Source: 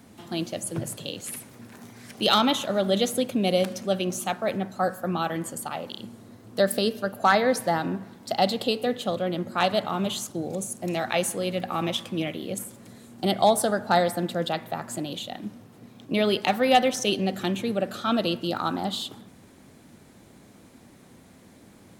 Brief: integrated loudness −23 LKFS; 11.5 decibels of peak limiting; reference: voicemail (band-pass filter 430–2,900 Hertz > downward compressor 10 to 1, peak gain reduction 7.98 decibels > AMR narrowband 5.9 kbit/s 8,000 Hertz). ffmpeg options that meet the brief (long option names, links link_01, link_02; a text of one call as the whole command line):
ffmpeg -i in.wav -af "alimiter=limit=-20dB:level=0:latency=1,highpass=430,lowpass=2900,acompressor=threshold=-32dB:ratio=10,volume=17dB" -ar 8000 -c:a libopencore_amrnb -b:a 5900 out.amr